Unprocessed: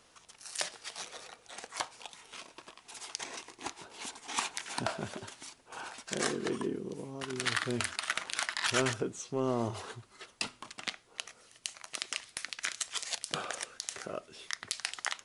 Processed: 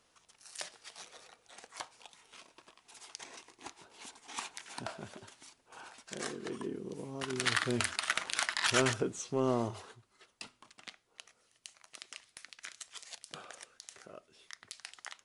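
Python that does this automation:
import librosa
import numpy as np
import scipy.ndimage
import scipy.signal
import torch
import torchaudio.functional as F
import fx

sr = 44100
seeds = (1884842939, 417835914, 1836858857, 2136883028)

y = fx.gain(x, sr, db=fx.line((6.41, -7.5), (7.2, 1.0), (9.55, 1.0), (9.98, -11.5)))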